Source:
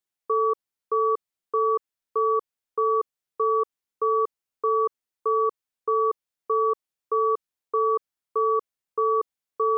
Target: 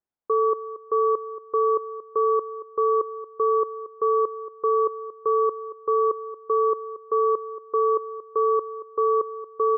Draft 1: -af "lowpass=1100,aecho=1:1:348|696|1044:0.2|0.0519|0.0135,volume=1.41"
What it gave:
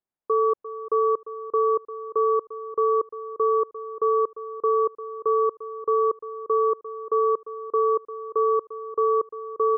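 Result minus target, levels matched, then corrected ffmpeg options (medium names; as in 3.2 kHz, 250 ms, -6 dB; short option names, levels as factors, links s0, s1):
echo 119 ms late
-af "lowpass=1100,aecho=1:1:229|458|687:0.2|0.0519|0.0135,volume=1.41"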